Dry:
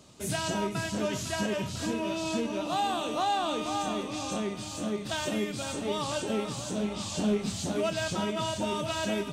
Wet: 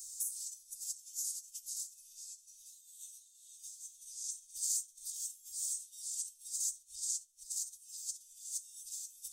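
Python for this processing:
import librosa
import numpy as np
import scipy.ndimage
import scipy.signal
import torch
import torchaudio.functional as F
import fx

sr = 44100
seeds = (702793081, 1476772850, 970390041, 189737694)

y = fx.bass_treble(x, sr, bass_db=4, treble_db=4)
y = fx.notch_comb(y, sr, f0_hz=570.0)
y = fx.over_compress(y, sr, threshold_db=-40.0, ratio=-1.0)
y = scipy.signal.sosfilt(scipy.signal.cheby2(4, 80, [190.0, 1200.0], 'bandstop', fs=sr, output='sos'), y)
y = F.preemphasis(torch.from_numpy(y), 0.8).numpy()
y = fx.ensemble(y, sr, at=(2.12, 4.23), fade=0.02)
y = y * librosa.db_to_amplitude(6.5)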